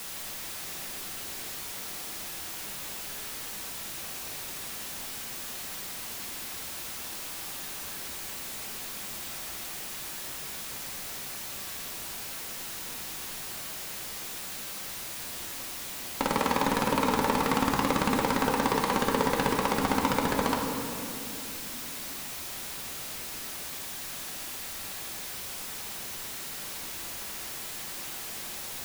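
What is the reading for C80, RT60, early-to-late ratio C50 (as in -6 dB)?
4.0 dB, 2.9 s, 2.5 dB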